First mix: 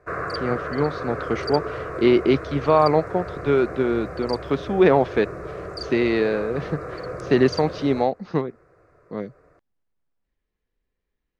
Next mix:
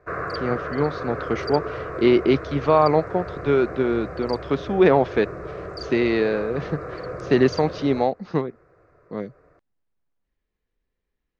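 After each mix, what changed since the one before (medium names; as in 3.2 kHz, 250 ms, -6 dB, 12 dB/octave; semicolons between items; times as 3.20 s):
background: add distance through air 73 m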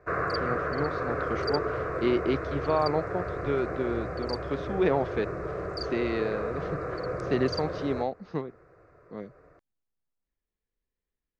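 speech -9.0 dB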